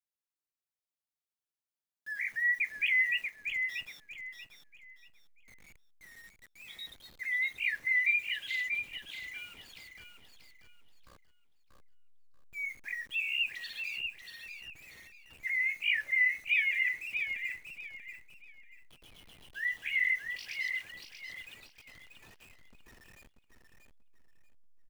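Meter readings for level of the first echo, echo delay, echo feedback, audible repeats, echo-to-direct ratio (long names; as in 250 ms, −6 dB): −6.0 dB, 636 ms, 28%, 3, −5.5 dB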